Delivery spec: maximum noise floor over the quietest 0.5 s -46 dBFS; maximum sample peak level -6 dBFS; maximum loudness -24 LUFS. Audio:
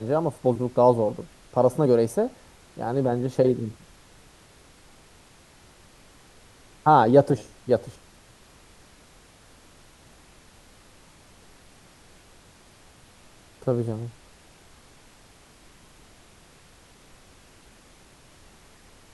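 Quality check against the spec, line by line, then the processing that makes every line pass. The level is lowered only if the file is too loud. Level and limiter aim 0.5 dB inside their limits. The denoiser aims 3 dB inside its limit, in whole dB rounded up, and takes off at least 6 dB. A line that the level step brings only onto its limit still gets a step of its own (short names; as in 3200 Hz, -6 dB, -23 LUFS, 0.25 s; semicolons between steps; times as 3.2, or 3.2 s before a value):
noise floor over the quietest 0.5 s -53 dBFS: OK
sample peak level -4.5 dBFS: fail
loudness -23.0 LUFS: fail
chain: gain -1.5 dB; limiter -6.5 dBFS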